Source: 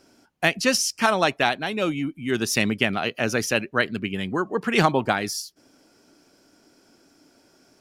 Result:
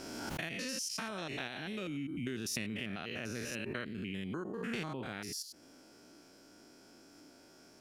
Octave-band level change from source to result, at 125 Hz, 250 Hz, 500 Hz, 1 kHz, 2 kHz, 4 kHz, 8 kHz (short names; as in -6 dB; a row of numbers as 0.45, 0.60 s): -13.0, -13.5, -18.5, -21.5, -17.0, -14.5, -13.0 dB